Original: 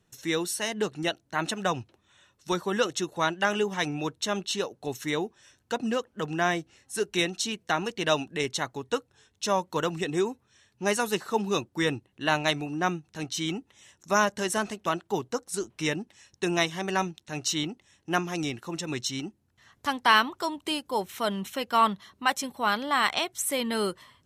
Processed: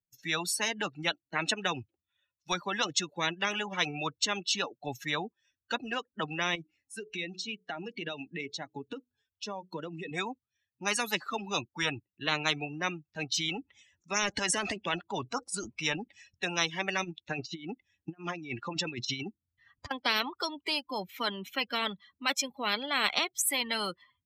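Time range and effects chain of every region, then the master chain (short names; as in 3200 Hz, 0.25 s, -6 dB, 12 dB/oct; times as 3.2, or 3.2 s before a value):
6.55–10.11 dynamic EQ 1200 Hz, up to -4 dB, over -40 dBFS, Q 1.4 + compressor 4:1, threshold -36 dBFS + de-hum 61.54 Hz, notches 7
13.39–16.47 transient shaper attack -1 dB, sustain +8 dB + brick-wall FIR low-pass 11000 Hz
17.04–19.91 LPF 7900 Hz + negative-ratio compressor -35 dBFS, ratio -0.5
whole clip: per-bin expansion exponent 2; three-band isolator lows -22 dB, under 200 Hz, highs -22 dB, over 3300 Hz; spectral compressor 10:1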